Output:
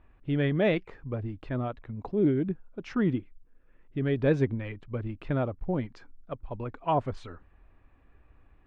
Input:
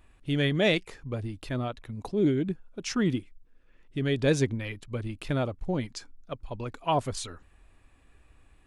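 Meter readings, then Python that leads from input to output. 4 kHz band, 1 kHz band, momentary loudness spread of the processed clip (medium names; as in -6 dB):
-11.5 dB, -0.5 dB, 14 LU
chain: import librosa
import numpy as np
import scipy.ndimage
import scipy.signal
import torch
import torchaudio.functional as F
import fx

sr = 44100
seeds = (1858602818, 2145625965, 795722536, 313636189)

y = scipy.signal.sosfilt(scipy.signal.butter(2, 1800.0, 'lowpass', fs=sr, output='sos'), x)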